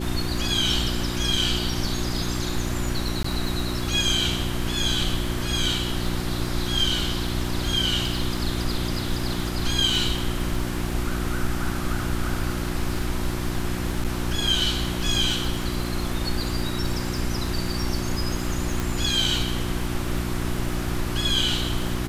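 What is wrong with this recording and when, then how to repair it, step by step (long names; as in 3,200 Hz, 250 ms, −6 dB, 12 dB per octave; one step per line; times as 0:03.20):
surface crackle 32 per second −30 dBFS
mains hum 60 Hz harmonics 6 −29 dBFS
0:03.23–0:03.24: drop-out 14 ms
0:14.04–0:14.05: drop-out 7 ms
0:18.80: click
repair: click removal
hum removal 60 Hz, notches 6
repair the gap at 0:03.23, 14 ms
repair the gap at 0:14.04, 7 ms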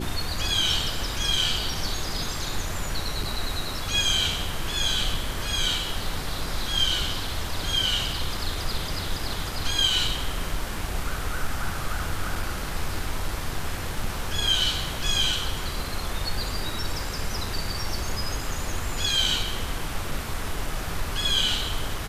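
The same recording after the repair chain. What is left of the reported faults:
none of them is left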